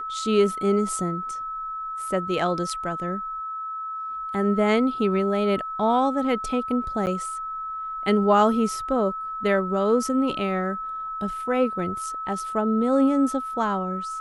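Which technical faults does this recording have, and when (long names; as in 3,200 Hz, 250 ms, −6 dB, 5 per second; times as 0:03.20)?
whistle 1,300 Hz −29 dBFS
0:07.06–0:07.07: drop-out 9.3 ms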